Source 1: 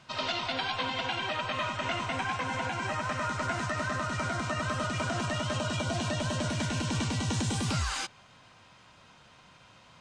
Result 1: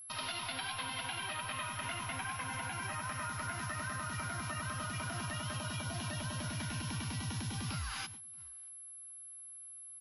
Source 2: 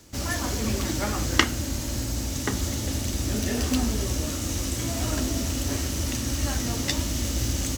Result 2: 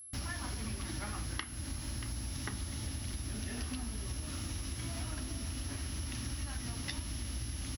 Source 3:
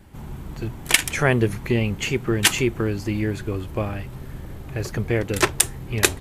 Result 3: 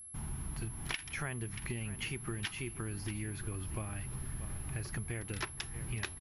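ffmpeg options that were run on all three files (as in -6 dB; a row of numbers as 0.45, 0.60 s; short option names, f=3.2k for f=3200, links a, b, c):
-filter_complex "[0:a]acrossover=split=5700[a][b];[b]acompressor=threshold=-46dB:ratio=4:attack=1:release=60[c];[a][c]amix=inputs=2:normalize=0,aecho=1:1:632:0.112,agate=range=-17dB:threshold=-45dB:ratio=16:detection=peak,equalizer=f=250:t=o:w=1:g=-3,equalizer=f=500:t=o:w=1:g=-10,equalizer=f=8k:t=o:w=1:g=-9,acompressor=threshold=-32dB:ratio=12,aeval=exprs='val(0)+0.00631*sin(2*PI*11000*n/s)':c=same,equalizer=f=5.4k:w=5.6:g=6.5,volume=-3.5dB"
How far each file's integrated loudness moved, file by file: -8.0, -12.5, -17.5 LU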